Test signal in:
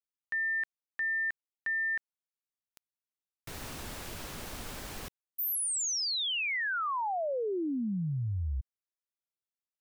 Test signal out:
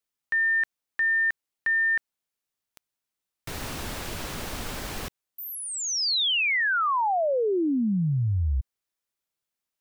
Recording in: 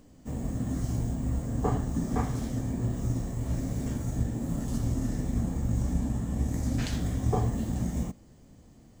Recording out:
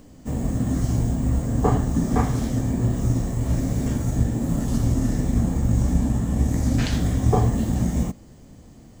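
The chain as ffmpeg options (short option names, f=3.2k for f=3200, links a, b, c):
-filter_complex "[0:a]acrossover=split=5600[a][b];[b]acompressor=threshold=-46dB:ratio=4:attack=1:release=60[c];[a][c]amix=inputs=2:normalize=0,volume=8dB"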